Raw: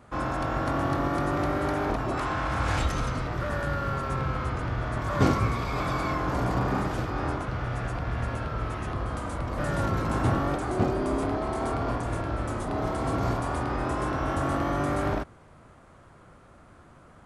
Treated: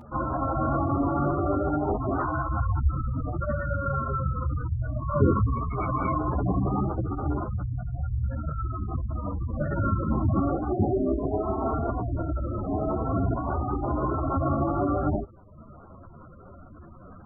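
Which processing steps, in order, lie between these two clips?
upward compressor, threshold -41 dBFS; spectral gate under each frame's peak -10 dB strong; three-phase chorus; trim +6.5 dB

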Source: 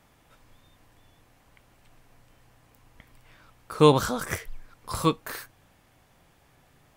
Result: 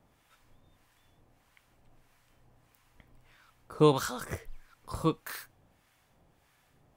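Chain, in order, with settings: harmonic tremolo 1.6 Hz, depth 70%, crossover 940 Hz; trim -3 dB

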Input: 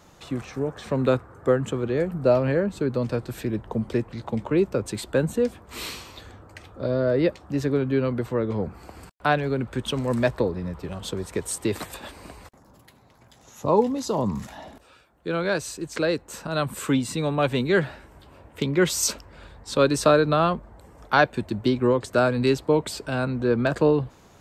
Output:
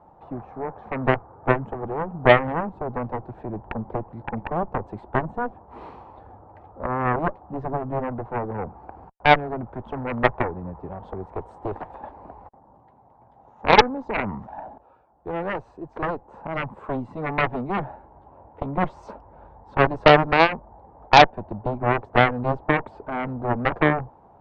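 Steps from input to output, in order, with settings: resonant low-pass 840 Hz, resonance Q 4.7; Chebyshev shaper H 3 -25 dB, 5 -9 dB, 7 -6 dB, 8 -18 dB, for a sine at 1 dBFS; trim -3 dB

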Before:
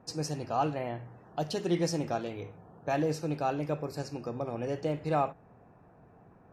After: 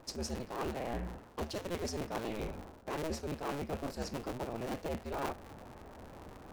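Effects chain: cycle switcher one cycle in 2, inverted; reverse; compression 10:1, threshold -42 dBFS, peak gain reduction 18.5 dB; reverse; trim +7 dB

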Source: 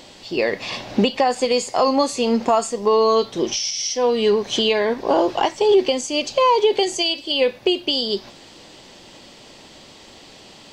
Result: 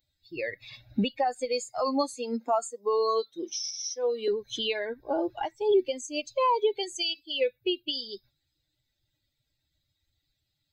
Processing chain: expander on every frequency bin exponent 2; 2.14–4.28 s: high-pass 240 Hz 24 dB/octave; trim -6 dB

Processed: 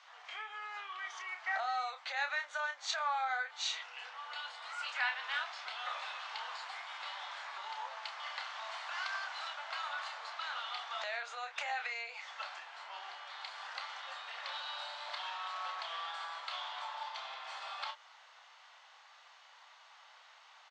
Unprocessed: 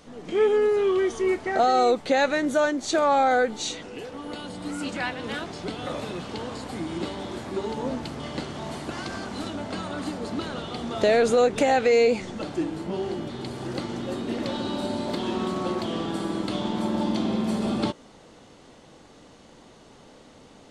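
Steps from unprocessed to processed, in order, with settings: Bessel low-pass 4.3 kHz, order 8; treble shelf 2 kHz -9 dB; doubling 30 ms -7.5 dB; compression 6:1, threshold -26 dBFS, peak gain reduction 11 dB; Bessel high-pass 1.5 kHz, order 8; trim +5.5 dB

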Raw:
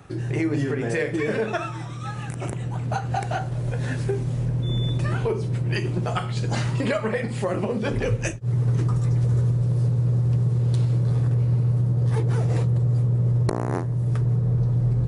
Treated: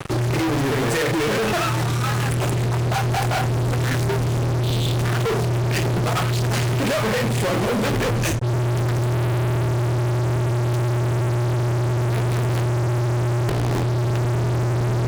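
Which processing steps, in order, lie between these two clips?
9.14–9.69 s: peaking EQ 180 Hz +7.5 dB 1.2 oct; fuzz box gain 45 dB, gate -45 dBFS; trim -6.5 dB

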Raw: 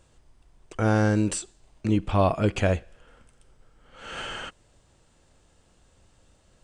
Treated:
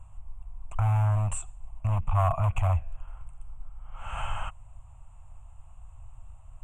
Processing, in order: tilt EQ -3.5 dB/octave; hard clipper -14.5 dBFS, distortion -8 dB; compression 5:1, threshold -22 dBFS, peak gain reduction 6 dB; FFT filter 110 Hz 0 dB, 290 Hz -26 dB, 430 Hz -28 dB, 680 Hz +2 dB, 1.1 kHz +9 dB, 1.7 kHz -8 dB, 2.6 kHz +4 dB, 4.9 kHz -23 dB, 7.3 kHz +8 dB

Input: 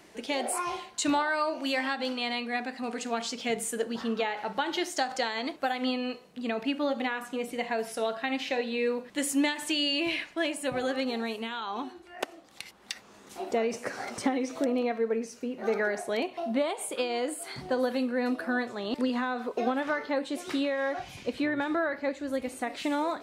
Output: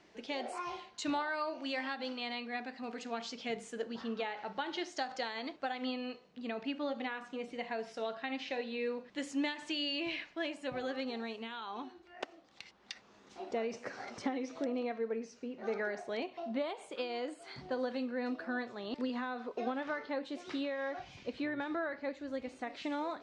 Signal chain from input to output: low-pass 6.1 kHz 24 dB/octave; trim -8 dB

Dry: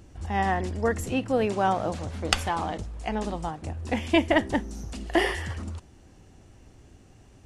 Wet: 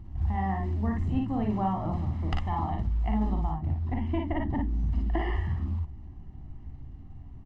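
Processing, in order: tilt EQ -2.5 dB/octave; hum notches 50/100/150/200/250/300/350/400 Hz; comb 1 ms, depth 83%; compression 12:1, threshold -19 dBFS, peak gain reduction 9 dB; short-mantissa float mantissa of 4-bit; tape spacing loss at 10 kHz 25 dB, from 3.53 s at 10 kHz 38 dB, from 4.73 s at 10 kHz 30 dB; early reflections 43 ms -6 dB, 57 ms -4 dB; trim -5 dB

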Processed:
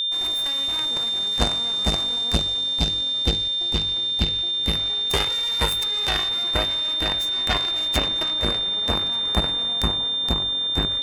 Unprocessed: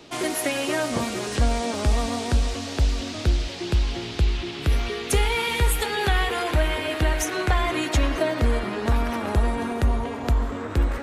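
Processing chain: Chebyshev shaper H 3 -7 dB, 5 -28 dB, 8 -28 dB, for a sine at -10 dBFS; whistle 3.6 kHz -25 dBFS; trim +3.5 dB

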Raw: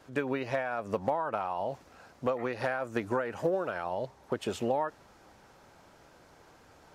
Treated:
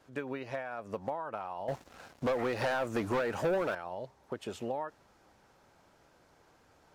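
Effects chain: 1.68–3.75 s: waveshaping leveller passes 3; trim -6.5 dB

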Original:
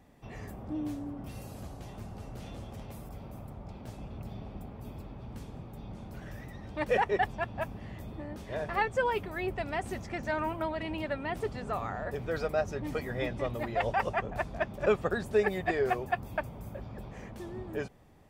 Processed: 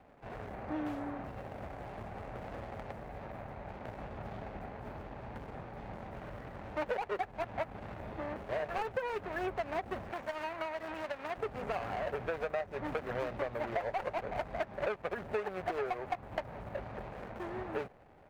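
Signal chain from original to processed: median filter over 41 samples; three-band isolator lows -17 dB, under 560 Hz, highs -14 dB, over 2.6 kHz; compression 10:1, threshold -44 dBFS, peak gain reduction 15.5 dB; 10.11–11.38 s: bass shelf 470 Hz -9.5 dB; trim +12.5 dB

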